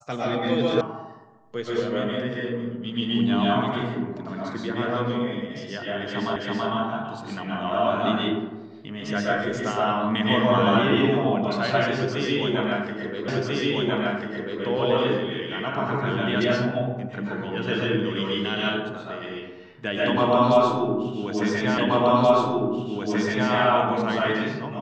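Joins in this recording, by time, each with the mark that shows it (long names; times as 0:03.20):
0:00.81: cut off before it has died away
0:06.36: the same again, the last 0.33 s
0:13.28: the same again, the last 1.34 s
0:21.78: the same again, the last 1.73 s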